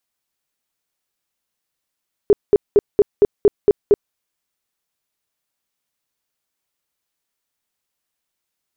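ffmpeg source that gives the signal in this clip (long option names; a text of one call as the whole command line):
ffmpeg -f lavfi -i "aevalsrc='0.473*sin(2*PI*410*mod(t,0.23))*lt(mod(t,0.23),12/410)':duration=1.84:sample_rate=44100" out.wav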